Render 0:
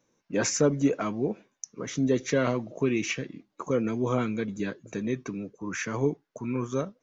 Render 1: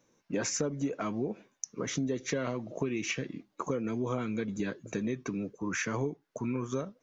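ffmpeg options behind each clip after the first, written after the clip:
ffmpeg -i in.wav -af "acompressor=threshold=-31dB:ratio=6,volume=2dB" out.wav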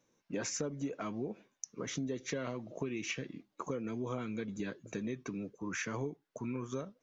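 ffmpeg -i in.wav -af "equalizer=frequency=3300:width=1.5:gain=2,volume=-5.5dB" out.wav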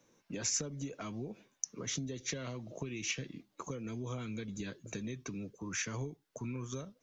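ffmpeg -i in.wav -filter_complex "[0:a]acrossover=split=130|3000[link_01][link_02][link_03];[link_02]acompressor=threshold=-56dB:ratio=2[link_04];[link_01][link_04][link_03]amix=inputs=3:normalize=0,volume=6dB" out.wav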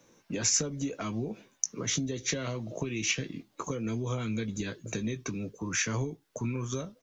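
ffmpeg -i in.wav -filter_complex "[0:a]asplit=2[link_01][link_02];[link_02]adelay=18,volume=-11dB[link_03];[link_01][link_03]amix=inputs=2:normalize=0,volume=7dB" out.wav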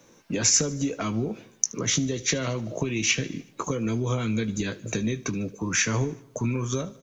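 ffmpeg -i in.wav -af "aecho=1:1:75|150|225|300|375:0.0891|0.0526|0.031|0.0183|0.0108,volume=6dB" out.wav

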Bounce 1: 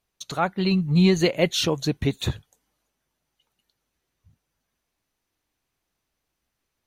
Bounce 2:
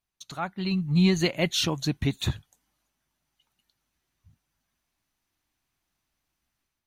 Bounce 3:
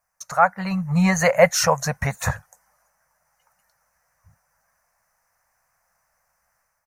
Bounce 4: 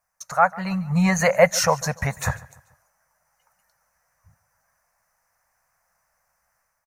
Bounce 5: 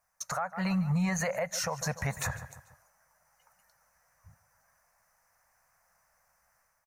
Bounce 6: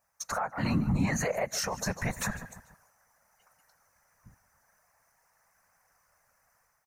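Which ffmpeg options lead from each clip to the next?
ffmpeg -i in.wav -af "equalizer=frequency=470:width_type=o:width=0.61:gain=-9,dynaudnorm=framelen=550:gausssize=3:maxgain=7.5dB,volume=-7.5dB" out.wav
ffmpeg -i in.wav -af "firequalizer=gain_entry='entry(190,0);entry(330,-24);entry(500,14);entry(1800,13);entry(3400,-17);entry(5300,8)':delay=0.05:min_phase=1,volume=2.5dB" out.wav
ffmpeg -i in.wav -af "aecho=1:1:145|290|435:0.0891|0.0365|0.015,volume=-1dB" out.wav
ffmpeg -i in.wav -af "acompressor=threshold=-22dB:ratio=6,alimiter=limit=-22.5dB:level=0:latency=1:release=94" out.wav
ffmpeg -i in.wav -af "afftfilt=real='hypot(re,im)*cos(2*PI*random(0))':imag='hypot(re,im)*sin(2*PI*random(1))':win_size=512:overlap=0.75,volume=7dB" out.wav

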